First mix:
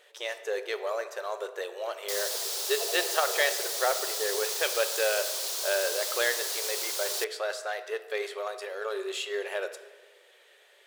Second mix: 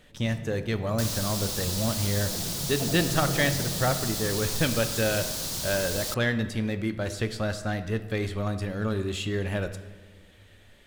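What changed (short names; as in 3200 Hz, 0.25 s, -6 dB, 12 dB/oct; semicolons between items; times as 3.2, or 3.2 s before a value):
second sound: entry -1.10 s; master: remove brick-wall FIR high-pass 360 Hz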